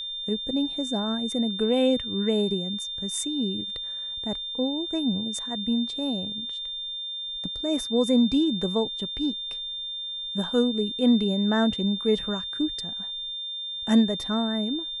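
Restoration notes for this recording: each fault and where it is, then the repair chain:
whistle 3,600 Hz −31 dBFS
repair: notch filter 3,600 Hz, Q 30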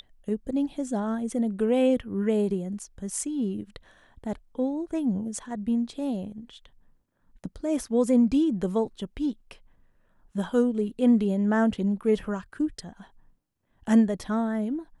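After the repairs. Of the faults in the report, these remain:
none of them is left

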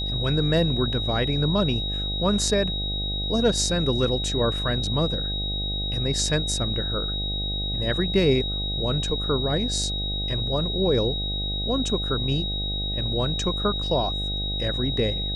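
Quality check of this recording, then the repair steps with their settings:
mains buzz 50 Hz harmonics 16 −30 dBFS
whistle 3,800 Hz −28 dBFS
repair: hum removal 50 Hz, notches 16
notch filter 3,800 Hz, Q 30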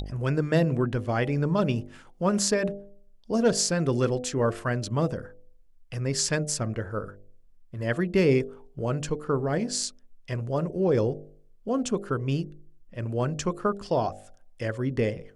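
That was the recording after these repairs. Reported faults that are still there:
none of them is left

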